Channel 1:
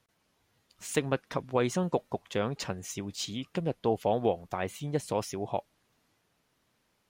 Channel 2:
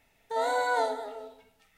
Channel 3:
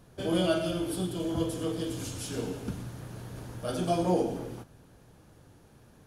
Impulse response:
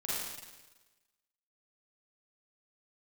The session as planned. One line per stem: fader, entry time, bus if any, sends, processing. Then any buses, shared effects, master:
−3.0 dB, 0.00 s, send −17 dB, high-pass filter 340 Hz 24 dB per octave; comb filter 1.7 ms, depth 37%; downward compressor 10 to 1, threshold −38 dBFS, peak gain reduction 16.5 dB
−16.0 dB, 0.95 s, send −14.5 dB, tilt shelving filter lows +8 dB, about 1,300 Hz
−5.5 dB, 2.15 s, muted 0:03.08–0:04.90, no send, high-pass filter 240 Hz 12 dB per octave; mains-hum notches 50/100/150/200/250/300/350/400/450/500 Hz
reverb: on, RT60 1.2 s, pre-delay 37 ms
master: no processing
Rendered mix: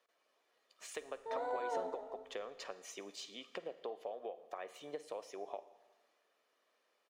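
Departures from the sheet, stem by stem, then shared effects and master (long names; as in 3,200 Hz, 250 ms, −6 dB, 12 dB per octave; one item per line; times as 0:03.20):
stem 3: muted
master: extra low-pass filter 3,300 Hz 6 dB per octave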